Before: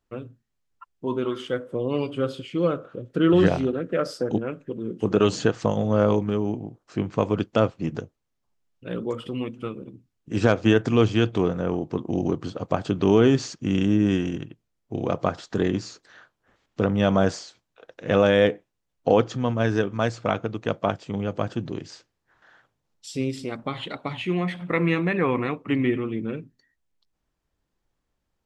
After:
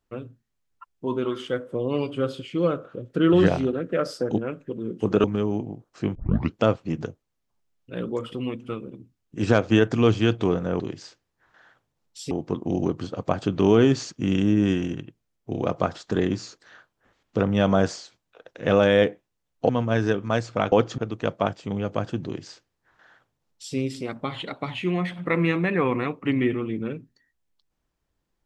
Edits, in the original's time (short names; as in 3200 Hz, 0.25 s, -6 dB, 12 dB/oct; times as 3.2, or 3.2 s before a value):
5.24–6.18 cut
7.09 tape start 0.39 s
19.12–19.38 move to 20.41
21.68–23.19 copy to 11.74